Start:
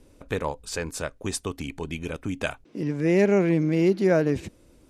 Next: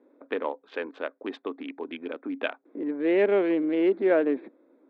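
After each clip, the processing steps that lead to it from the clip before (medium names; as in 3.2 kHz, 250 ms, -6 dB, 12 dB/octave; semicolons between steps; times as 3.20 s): local Wiener filter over 15 samples; Chebyshev band-pass 260–3500 Hz, order 4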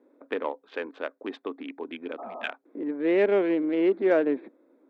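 spectral replace 2.21–2.46 s, 240–1300 Hz after; Chebyshev shaper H 7 -37 dB, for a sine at -11.5 dBFS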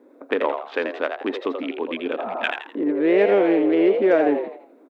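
compression 2:1, threshold -27 dBFS, peak gain reduction 6 dB; on a send: frequency-shifting echo 83 ms, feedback 34%, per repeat +100 Hz, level -6.5 dB; on the sum: trim +9 dB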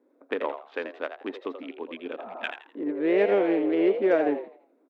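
upward expansion 1.5:1, over -33 dBFS; trim -4 dB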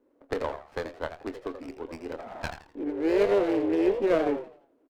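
doubling 25 ms -12 dB; sliding maximum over 9 samples; trim -1.5 dB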